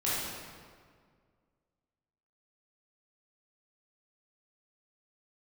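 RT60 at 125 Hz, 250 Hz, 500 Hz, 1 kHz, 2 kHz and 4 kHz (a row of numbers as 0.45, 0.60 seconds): 2.2, 2.2, 2.0, 1.8, 1.5, 1.3 seconds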